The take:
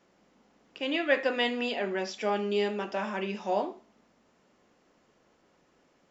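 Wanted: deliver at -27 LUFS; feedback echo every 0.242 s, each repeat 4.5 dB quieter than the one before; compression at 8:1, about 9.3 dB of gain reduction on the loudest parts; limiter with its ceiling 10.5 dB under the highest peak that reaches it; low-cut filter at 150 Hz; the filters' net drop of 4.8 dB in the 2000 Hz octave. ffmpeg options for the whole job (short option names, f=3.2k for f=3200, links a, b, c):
-af "highpass=150,equalizer=f=2k:t=o:g=-6,acompressor=threshold=-31dB:ratio=8,alimiter=level_in=8dB:limit=-24dB:level=0:latency=1,volume=-8dB,aecho=1:1:242|484|726|968|1210|1452|1694|1936|2178:0.596|0.357|0.214|0.129|0.0772|0.0463|0.0278|0.0167|0.01,volume=12.5dB"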